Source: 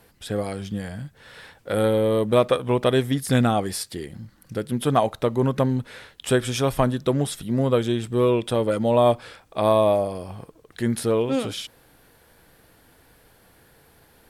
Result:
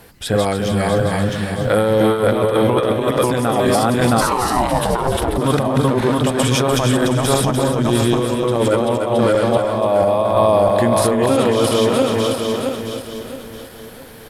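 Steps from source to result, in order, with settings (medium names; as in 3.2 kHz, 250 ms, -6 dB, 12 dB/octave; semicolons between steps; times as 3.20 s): backward echo that repeats 334 ms, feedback 60%, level -0.5 dB; compressor with a negative ratio -21 dBFS, ratio -0.5; on a send: feedback delay 295 ms, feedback 24%, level -9 dB; 4.20–5.37 s: on the sum: ring modulator 810 Hz -> 180 Hz; dynamic bell 1 kHz, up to +5 dB, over -36 dBFS, Q 0.93; in parallel at +3 dB: peak limiter -18 dBFS, peak gain reduction 13.5 dB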